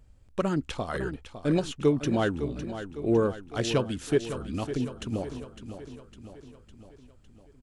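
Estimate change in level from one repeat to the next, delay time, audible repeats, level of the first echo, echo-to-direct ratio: −5.0 dB, 556 ms, 5, −11.0 dB, −9.5 dB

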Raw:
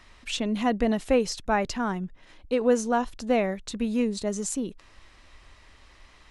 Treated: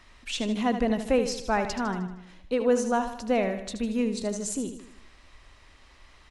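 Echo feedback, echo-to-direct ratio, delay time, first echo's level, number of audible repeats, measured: 51%, −8.0 dB, 77 ms, −9.5 dB, 5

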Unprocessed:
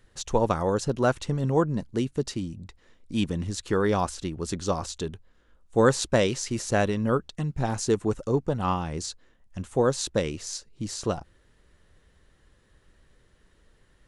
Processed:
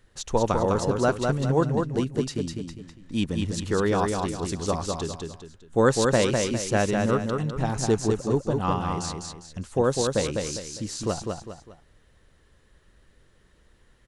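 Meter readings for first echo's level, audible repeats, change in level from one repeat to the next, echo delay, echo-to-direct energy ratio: −4.0 dB, 3, −8.5 dB, 202 ms, −3.5 dB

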